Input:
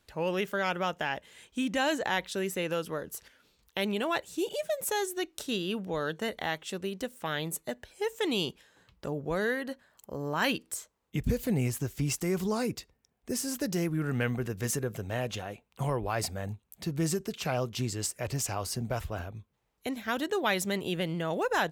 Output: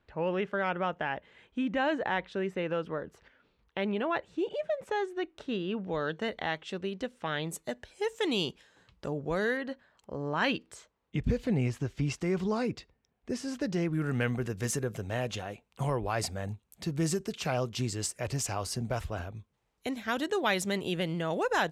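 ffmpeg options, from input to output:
-af "asetnsamples=n=441:p=0,asendcmd='5.86 lowpass f 4100;7.49 lowpass f 8000;9.57 lowpass f 4000;13.93 lowpass f 10000',lowpass=2.2k"

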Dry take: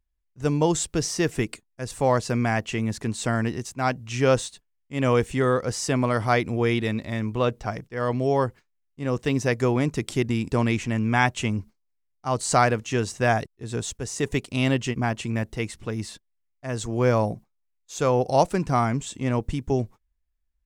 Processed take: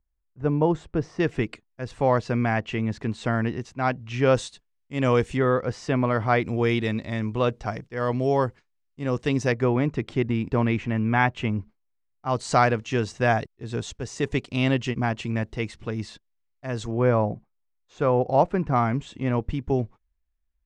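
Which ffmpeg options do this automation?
-af "asetnsamples=n=441:p=0,asendcmd='1.2 lowpass f 3300;4.35 lowpass f 6300;5.37 lowpass f 2900;6.42 lowpass f 6400;9.52 lowpass f 2600;12.29 lowpass f 4800;16.91 lowpass f 2000;18.76 lowpass f 3200',lowpass=1.5k"

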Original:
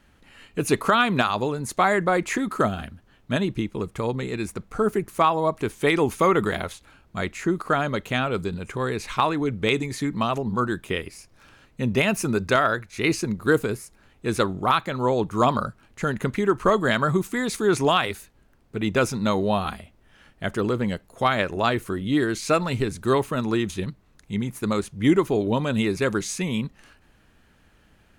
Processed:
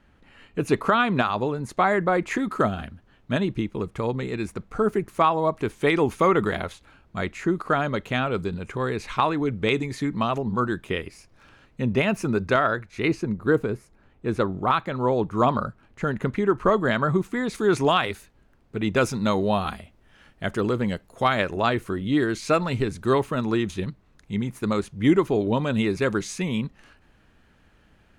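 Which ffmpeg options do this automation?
-af "asetnsamples=n=441:p=0,asendcmd='2.31 lowpass f 3900;11.82 lowpass f 2400;13.08 lowpass f 1200;14.53 lowpass f 2100;17.55 lowpass f 4800;18.96 lowpass f 8900;21.56 lowpass f 4600',lowpass=f=2.3k:p=1"

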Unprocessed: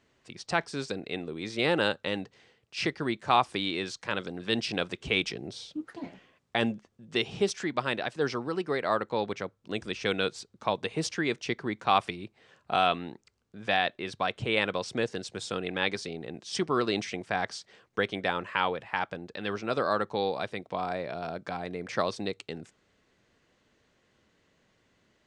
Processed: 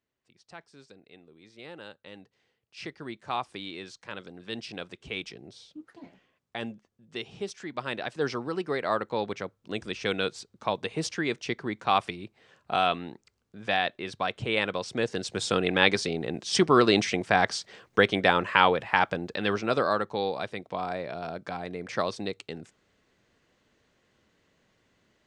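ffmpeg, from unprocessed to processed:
-af "volume=7.5dB,afade=t=in:st=1.85:d=1.35:silence=0.298538,afade=t=in:st=7.6:d=0.59:silence=0.398107,afade=t=in:st=14.95:d=0.55:silence=0.421697,afade=t=out:st=19.25:d=0.78:silence=0.421697"

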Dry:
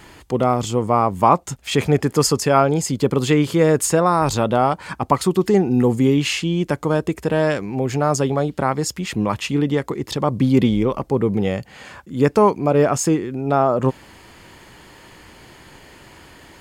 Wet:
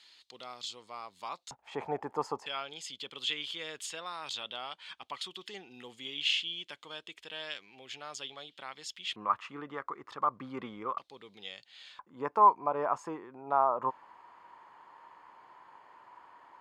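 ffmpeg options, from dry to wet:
-af "asetnsamples=n=441:p=0,asendcmd='1.51 bandpass f 860;2.46 bandpass f 3300;9.16 bandpass f 1200;10.98 bandpass f 3700;11.99 bandpass f 1000',bandpass=f=4k:t=q:w=5:csg=0"

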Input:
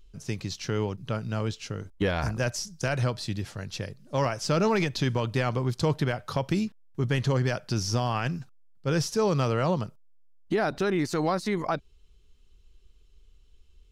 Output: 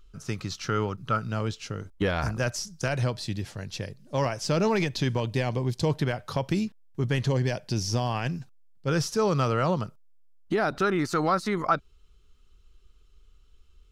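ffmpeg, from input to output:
-af "asetnsamples=n=441:p=0,asendcmd='1.29 equalizer g 3.5;2.88 equalizer g -4;5.2 equalizer g -13;5.91 equalizer g -2.5;7.29 equalizer g -12.5;7.93 equalizer g -6.5;8.88 equalizer g 5;10.76 equalizer g 12',equalizer=f=1.3k:t=o:w=0.36:g=14"

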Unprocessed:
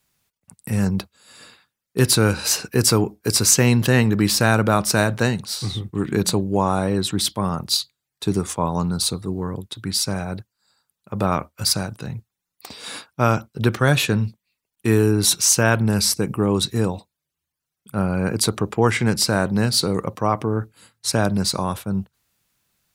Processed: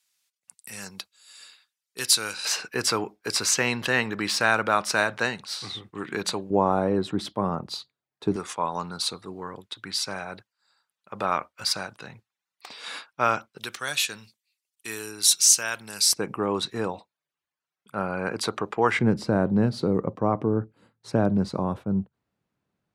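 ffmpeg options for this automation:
-af "asetnsamples=n=441:p=0,asendcmd='2.45 bandpass f 1800;6.5 bandpass f 530;8.36 bandpass f 1800;13.58 bandpass f 6600;16.13 bandpass f 1200;18.99 bandpass f 300',bandpass=f=5.6k:t=q:w=0.58:csg=0"

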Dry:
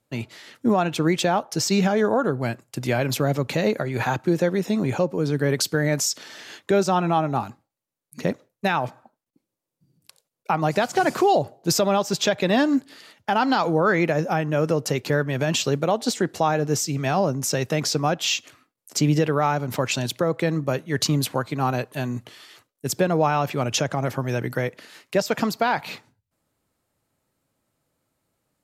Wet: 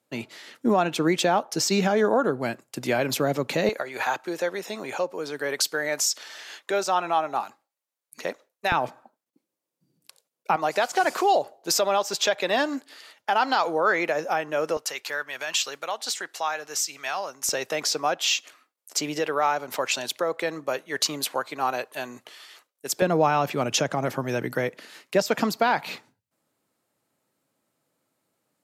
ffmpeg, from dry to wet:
-af "asetnsamples=n=441:p=0,asendcmd='3.69 highpass f 590;8.72 highpass f 230;10.56 highpass f 500;14.77 highpass f 1100;17.49 highpass f 510;23.02 highpass f 180',highpass=220"

